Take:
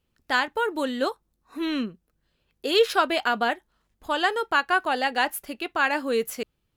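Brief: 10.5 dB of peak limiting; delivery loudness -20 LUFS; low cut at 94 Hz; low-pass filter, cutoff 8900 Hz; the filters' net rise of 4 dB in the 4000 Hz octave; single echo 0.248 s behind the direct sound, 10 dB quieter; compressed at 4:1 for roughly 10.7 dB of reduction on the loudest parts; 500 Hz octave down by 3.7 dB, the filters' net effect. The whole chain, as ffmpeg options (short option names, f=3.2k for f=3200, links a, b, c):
-af "highpass=94,lowpass=8.9k,equalizer=f=500:t=o:g=-4.5,equalizer=f=4k:t=o:g=5.5,acompressor=threshold=-29dB:ratio=4,alimiter=level_in=2dB:limit=-24dB:level=0:latency=1,volume=-2dB,aecho=1:1:248:0.316,volume=16.5dB"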